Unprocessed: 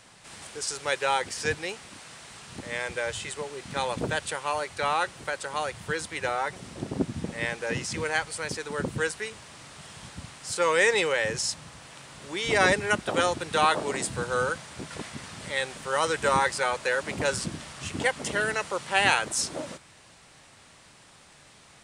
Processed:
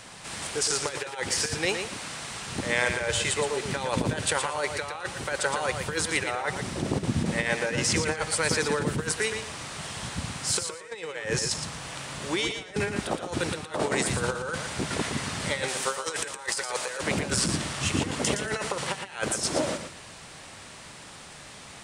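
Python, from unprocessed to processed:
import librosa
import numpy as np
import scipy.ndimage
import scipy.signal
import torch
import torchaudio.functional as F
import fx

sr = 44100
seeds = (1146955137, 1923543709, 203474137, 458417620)

y = fx.bass_treble(x, sr, bass_db=-12, treble_db=6, at=(15.68, 17.01))
y = fx.over_compress(y, sr, threshold_db=-32.0, ratio=-0.5)
y = fx.echo_feedback(y, sr, ms=116, feedback_pct=20, wet_db=-7)
y = y * 10.0 ** (3.5 / 20.0)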